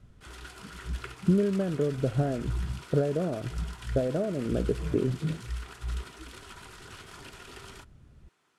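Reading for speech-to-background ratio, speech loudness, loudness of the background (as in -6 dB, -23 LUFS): 16.0 dB, -30.5 LUFS, -46.5 LUFS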